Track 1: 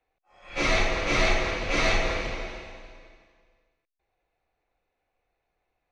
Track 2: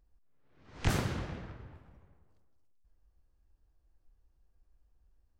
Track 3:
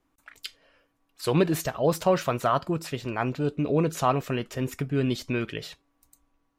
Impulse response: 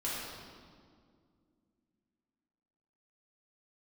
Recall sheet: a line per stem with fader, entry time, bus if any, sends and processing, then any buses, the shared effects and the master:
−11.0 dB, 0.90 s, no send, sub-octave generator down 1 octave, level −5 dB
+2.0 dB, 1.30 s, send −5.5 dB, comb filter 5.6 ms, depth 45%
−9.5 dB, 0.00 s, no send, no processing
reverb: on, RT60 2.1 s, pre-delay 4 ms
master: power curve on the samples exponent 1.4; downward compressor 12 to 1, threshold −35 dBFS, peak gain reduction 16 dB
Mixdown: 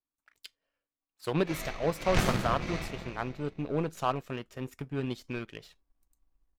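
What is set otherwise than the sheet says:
stem 3 −9.5 dB → −3.0 dB
master: missing downward compressor 12 to 1, threshold −35 dBFS, peak gain reduction 16 dB

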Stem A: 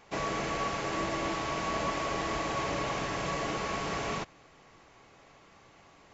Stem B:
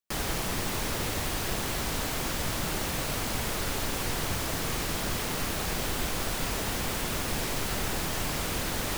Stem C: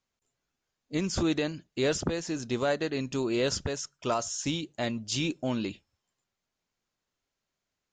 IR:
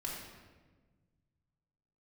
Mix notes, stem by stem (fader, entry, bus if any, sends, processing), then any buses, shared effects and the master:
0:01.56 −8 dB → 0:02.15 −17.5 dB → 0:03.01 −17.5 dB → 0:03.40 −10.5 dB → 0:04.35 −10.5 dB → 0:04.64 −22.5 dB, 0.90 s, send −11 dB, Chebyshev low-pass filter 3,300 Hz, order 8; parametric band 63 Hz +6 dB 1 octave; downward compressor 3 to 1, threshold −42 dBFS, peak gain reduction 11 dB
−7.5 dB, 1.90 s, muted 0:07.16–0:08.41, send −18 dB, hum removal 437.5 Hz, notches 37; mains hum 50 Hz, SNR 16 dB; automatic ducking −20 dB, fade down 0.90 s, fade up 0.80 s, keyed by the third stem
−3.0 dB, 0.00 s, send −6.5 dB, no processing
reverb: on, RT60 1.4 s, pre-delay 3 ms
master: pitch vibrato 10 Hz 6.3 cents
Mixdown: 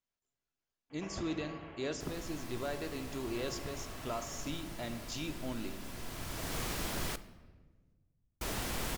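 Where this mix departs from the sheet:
stem B: send −18 dB → −12 dB
stem C −3.0 dB → −13.0 dB

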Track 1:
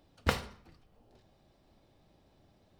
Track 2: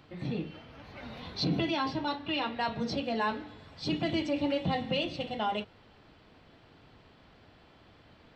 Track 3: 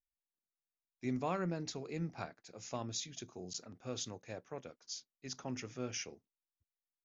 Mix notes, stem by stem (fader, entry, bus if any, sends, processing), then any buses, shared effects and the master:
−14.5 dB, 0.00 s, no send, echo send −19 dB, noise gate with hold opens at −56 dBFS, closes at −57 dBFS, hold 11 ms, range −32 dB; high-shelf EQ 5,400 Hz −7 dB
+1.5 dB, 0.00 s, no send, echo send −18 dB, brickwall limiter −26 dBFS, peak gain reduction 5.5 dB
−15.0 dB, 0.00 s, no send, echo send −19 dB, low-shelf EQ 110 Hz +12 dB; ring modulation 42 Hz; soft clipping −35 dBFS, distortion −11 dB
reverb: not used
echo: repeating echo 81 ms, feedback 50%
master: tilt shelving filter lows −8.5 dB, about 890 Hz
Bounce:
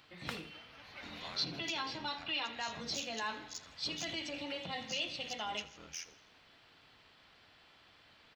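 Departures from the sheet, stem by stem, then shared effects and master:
stem 2 +1.5 dB → −5.5 dB
stem 3 −15.0 dB → −6.0 dB

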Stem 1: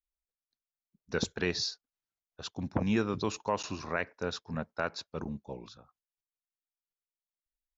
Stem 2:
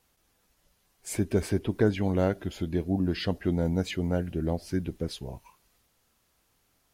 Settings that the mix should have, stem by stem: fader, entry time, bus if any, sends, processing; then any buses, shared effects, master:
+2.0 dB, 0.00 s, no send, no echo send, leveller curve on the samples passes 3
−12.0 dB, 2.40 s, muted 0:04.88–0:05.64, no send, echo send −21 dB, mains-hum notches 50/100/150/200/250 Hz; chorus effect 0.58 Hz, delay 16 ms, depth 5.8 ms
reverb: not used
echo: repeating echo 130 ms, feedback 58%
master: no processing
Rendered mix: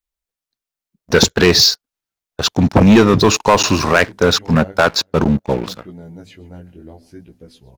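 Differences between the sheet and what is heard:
stem 1 +2.0 dB → +13.0 dB
stem 2 −12.0 dB → −5.5 dB

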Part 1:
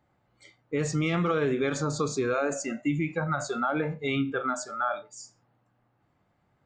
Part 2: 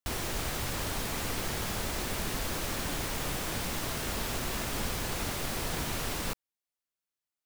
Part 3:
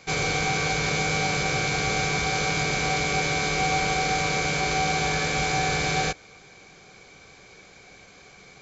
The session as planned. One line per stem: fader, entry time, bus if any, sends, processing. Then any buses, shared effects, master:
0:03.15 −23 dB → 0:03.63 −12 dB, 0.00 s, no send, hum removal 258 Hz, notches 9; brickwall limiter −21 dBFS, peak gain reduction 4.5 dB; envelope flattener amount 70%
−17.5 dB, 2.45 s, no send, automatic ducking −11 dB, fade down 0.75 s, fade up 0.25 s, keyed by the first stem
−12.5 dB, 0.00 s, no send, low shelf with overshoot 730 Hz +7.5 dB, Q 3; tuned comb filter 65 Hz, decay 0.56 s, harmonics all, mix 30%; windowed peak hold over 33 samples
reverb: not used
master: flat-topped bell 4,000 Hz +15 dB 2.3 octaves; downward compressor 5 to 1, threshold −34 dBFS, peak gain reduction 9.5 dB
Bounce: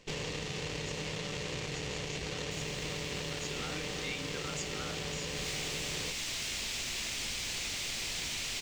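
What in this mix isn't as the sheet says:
stem 1: missing envelope flattener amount 70%
stem 2 −17.5 dB → −6.5 dB

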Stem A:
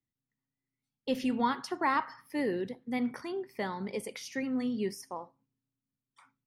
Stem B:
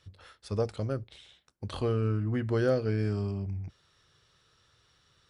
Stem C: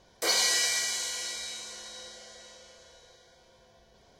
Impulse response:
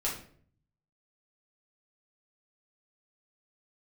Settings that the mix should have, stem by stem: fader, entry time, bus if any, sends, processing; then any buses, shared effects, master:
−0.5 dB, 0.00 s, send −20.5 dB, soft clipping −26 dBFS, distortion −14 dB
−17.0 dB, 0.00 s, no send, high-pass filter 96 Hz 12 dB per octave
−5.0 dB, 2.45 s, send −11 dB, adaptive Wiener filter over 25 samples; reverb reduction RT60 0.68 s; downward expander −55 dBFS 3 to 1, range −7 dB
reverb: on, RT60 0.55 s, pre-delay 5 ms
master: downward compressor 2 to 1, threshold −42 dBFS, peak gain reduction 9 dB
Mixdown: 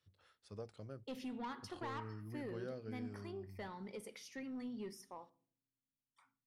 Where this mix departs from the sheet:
stem A −0.5 dB → −11.5 dB
stem C: muted

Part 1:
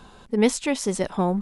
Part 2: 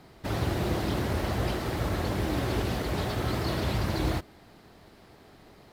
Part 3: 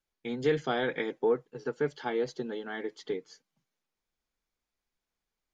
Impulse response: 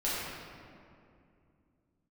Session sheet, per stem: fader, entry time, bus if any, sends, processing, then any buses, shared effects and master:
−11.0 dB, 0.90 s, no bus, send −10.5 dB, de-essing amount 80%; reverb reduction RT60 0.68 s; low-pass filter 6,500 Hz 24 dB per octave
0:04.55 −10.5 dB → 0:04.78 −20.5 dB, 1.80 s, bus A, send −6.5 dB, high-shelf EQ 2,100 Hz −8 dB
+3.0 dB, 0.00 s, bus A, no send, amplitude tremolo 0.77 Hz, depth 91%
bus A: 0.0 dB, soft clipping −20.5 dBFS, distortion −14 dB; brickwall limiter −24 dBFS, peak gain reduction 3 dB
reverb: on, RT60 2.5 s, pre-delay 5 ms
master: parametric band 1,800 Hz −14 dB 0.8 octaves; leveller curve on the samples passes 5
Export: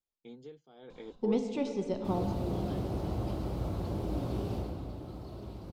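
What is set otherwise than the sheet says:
stem 3 +3.0 dB → −8.5 dB
master: missing leveller curve on the samples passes 5

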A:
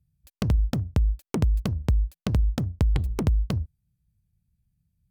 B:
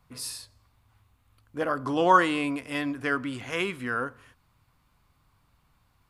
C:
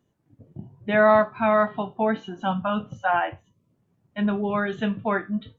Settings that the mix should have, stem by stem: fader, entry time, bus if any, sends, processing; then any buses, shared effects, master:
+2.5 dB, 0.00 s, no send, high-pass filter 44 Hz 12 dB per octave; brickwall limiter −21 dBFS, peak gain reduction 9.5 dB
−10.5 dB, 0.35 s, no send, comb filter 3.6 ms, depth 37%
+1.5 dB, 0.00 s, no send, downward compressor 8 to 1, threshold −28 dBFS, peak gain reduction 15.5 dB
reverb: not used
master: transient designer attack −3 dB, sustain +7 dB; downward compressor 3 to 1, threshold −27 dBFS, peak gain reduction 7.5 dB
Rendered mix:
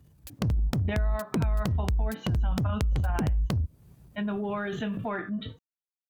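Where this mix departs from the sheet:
stem A +2.5 dB → +11.5 dB
stem B: muted

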